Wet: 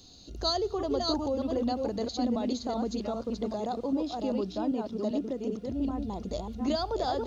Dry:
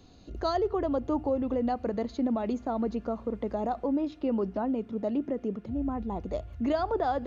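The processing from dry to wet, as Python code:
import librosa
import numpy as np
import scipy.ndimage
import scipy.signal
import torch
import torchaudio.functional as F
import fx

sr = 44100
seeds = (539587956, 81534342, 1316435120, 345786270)

y = fx.reverse_delay(x, sr, ms=393, wet_db=-3.0)
y = fx.high_shelf_res(y, sr, hz=3000.0, db=12.5, q=1.5)
y = y * 10.0 ** (-2.5 / 20.0)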